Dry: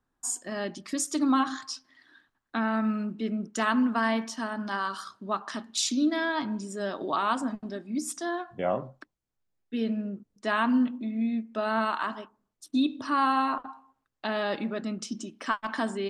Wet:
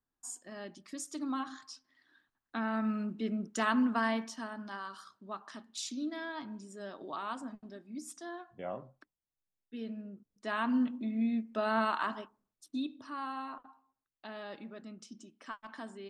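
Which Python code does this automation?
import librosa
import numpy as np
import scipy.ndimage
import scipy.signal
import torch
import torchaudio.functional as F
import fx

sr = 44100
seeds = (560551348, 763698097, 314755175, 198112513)

y = fx.gain(x, sr, db=fx.line((1.72, -12.0), (3.09, -4.0), (3.97, -4.0), (4.83, -12.0), (10.11, -12.0), (11.06, -3.0), (12.2, -3.0), (13.11, -15.0)))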